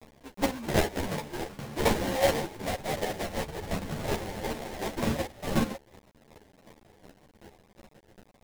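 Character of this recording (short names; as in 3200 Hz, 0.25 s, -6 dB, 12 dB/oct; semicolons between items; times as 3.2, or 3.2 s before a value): a quantiser's noise floor 8-bit, dither none; chopped level 2.7 Hz, depth 60%, duty 20%; aliases and images of a low sample rate 1300 Hz, jitter 20%; a shimmering, thickened sound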